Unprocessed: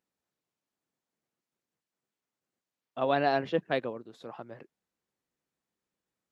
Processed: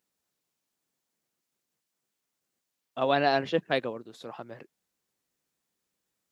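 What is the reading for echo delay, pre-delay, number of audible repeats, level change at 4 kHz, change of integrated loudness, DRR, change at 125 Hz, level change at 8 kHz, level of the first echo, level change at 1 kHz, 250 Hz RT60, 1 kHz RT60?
none, none, none, +6.0 dB, +2.0 dB, none, +1.5 dB, n/a, none, +2.0 dB, none, none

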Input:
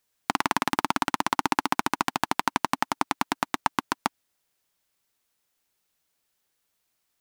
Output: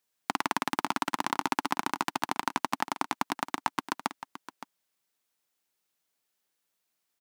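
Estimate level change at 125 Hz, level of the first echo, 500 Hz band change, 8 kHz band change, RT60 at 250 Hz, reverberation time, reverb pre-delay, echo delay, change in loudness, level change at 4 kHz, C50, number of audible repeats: -7.0 dB, -13.5 dB, -4.5 dB, -4.5 dB, none, none, none, 0.567 s, -4.5 dB, -4.5 dB, none, 1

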